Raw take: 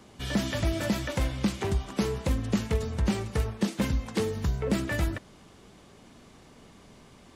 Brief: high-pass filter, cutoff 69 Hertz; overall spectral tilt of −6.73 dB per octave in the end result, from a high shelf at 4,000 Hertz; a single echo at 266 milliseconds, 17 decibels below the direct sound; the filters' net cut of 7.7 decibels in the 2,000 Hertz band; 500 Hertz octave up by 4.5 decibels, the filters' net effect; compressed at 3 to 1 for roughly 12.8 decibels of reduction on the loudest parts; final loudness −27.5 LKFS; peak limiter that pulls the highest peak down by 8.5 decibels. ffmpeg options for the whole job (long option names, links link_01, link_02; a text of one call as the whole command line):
ffmpeg -i in.wav -af "highpass=69,equalizer=frequency=500:width_type=o:gain=6,equalizer=frequency=2000:width_type=o:gain=-8,highshelf=frequency=4000:gain=-8,acompressor=threshold=-38dB:ratio=3,alimiter=level_in=7dB:limit=-24dB:level=0:latency=1,volume=-7dB,aecho=1:1:266:0.141,volume=14.5dB" out.wav